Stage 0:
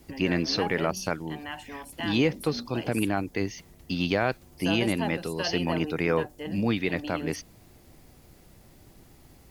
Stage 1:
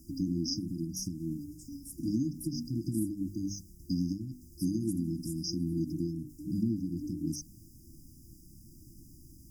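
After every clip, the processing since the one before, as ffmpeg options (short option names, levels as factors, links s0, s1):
-af "bandreject=f=50:t=h:w=6,bandreject=f=100:t=h:w=6,bandreject=f=150:t=h:w=6,bandreject=f=200:t=h:w=6,bandreject=f=250:t=h:w=6,bandreject=f=300:t=h:w=6,acompressor=threshold=0.0447:ratio=4,afftfilt=real='re*(1-between(b*sr/4096,350,4800))':imag='im*(1-between(b*sr/4096,350,4800))':win_size=4096:overlap=0.75,volume=1.19"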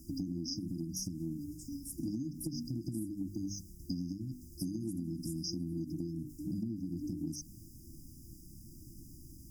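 -af "acompressor=threshold=0.0158:ratio=6,volume=1.19"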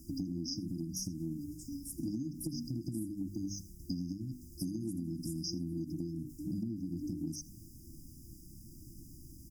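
-af "aecho=1:1:81:0.0841"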